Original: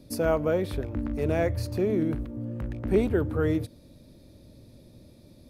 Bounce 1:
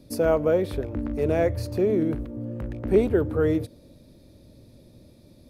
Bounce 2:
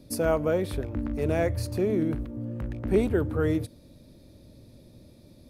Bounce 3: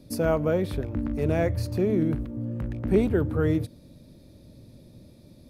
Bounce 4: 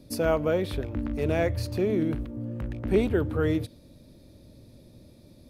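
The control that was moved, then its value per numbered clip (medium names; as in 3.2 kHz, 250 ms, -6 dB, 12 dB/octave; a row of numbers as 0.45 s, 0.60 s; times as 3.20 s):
dynamic bell, frequency: 470 Hz, 9.3 kHz, 160 Hz, 3.2 kHz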